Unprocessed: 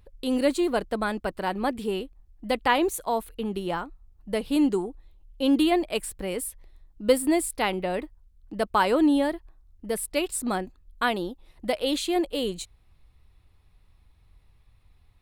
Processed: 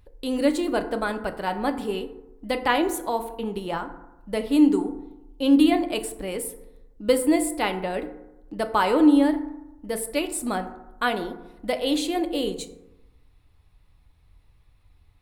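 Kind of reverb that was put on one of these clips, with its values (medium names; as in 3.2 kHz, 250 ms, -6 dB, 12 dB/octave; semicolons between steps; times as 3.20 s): FDN reverb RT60 0.95 s, low-frequency decay 1.05×, high-frequency decay 0.4×, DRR 7 dB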